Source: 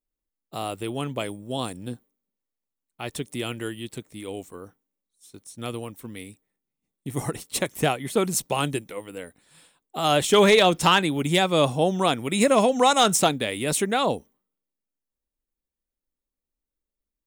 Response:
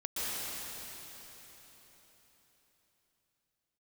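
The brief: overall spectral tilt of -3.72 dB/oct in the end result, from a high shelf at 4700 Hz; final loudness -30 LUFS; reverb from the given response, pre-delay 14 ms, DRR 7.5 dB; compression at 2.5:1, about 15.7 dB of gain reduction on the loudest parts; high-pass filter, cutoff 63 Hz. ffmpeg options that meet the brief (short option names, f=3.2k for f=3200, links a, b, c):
-filter_complex "[0:a]highpass=63,highshelf=f=4.7k:g=9,acompressor=threshold=-37dB:ratio=2.5,asplit=2[a][b];[1:a]atrim=start_sample=2205,adelay=14[c];[b][c]afir=irnorm=-1:irlink=0,volume=-14dB[d];[a][d]amix=inputs=2:normalize=0,volume=5dB"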